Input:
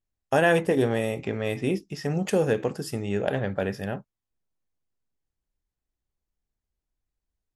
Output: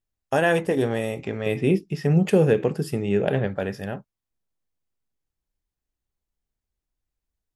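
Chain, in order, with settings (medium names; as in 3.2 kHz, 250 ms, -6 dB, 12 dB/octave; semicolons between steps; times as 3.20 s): 1.46–3.47 s: fifteen-band graphic EQ 160 Hz +10 dB, 400 Hz +6 dB, 2.5 kHz +4 dB, 6.3 kHz -5 dB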